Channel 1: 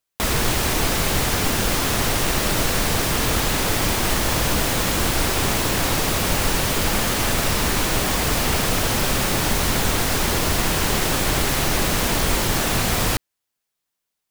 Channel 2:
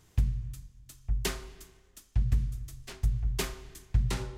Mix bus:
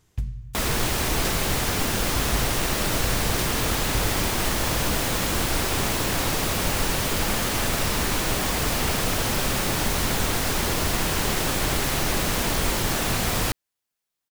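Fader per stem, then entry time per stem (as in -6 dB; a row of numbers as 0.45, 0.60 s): -3.5, -2.0 dB; 0.35, 0.00 s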